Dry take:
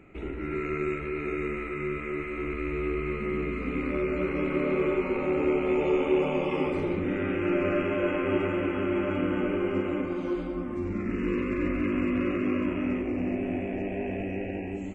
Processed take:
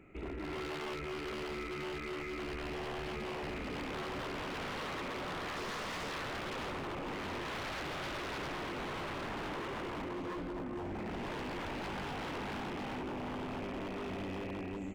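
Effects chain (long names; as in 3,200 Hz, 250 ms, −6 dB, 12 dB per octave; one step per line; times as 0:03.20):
0:05.55–0:06.10: hum with harmonics 400 Hz, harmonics 13, −44 dBFS 0 dB per octave
wave folding −30 dBFS
level −5 dB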